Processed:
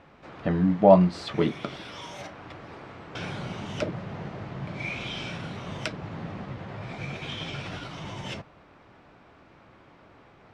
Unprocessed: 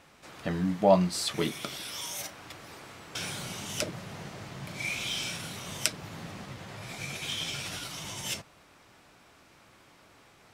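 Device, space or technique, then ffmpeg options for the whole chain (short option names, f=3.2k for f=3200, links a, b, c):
phone in a pocket: -af "lowpass=3.9k,highshelf=f=2k:g=-11.5,volume=6.5dB"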